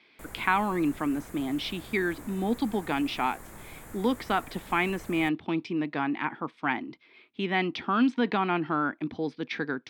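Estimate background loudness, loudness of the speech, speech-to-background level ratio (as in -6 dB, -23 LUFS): -46.5 LUFS, -29.0 LUFS, 17.5 dB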